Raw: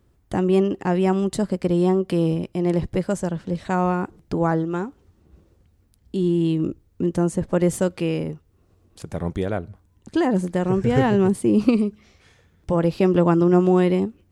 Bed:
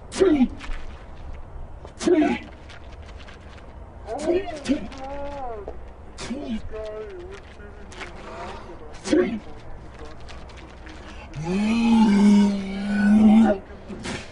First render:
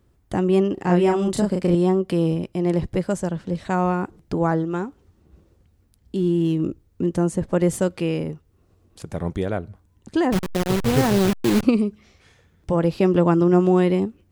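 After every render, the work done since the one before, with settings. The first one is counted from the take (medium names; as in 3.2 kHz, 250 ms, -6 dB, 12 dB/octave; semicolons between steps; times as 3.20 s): 0.74–1.75 s: doubling 34 ms -2 dB; 6.16–6.59 s: median filter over 9 samples; 10.32–11.63 s: send-on-delta sampling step -18.5 dBFS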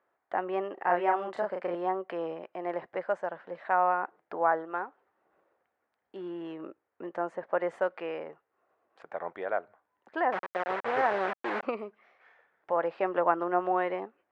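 Chebyshev band-pass 650–1800 Hz, order 2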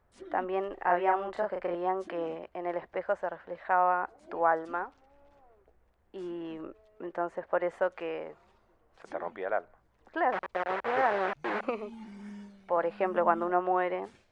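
add bed -29.5 dB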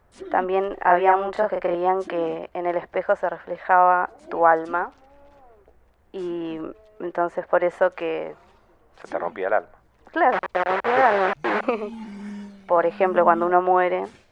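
trim +9.5 dB; peak limiter -3 dBFS, peak gain reduction 1.5 dB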